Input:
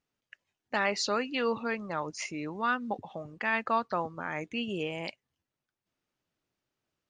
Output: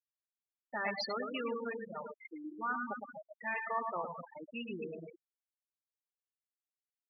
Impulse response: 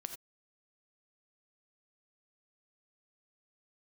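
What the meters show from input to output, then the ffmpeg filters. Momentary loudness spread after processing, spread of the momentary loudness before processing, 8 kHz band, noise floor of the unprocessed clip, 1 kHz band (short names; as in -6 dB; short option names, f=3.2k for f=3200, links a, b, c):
11 LU, 8 LU, under -20 dB, under -85 dBFS, -7.0 dB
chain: -filter_complex "[0:a]flanger=delay=2.2:depth=5.9:regen=-74:speed=0.37:shape=triangular,asplit=2[a][b];[b]aecho=0:1:110|242|400.4|590.5|818.6:0.631|0.398|0.251|0.158|0.1[c];[a][c]amix=inputs=2:normalize=0,afftfilt=real='re*gte(hypot(re,im),0.0631)':imag='im*gte(hypot(re,im),0.0631)':win_size=1024:overlap=0.75,bass=f=250:g=-2,treble=f=4k:g=12,volume=-3dB"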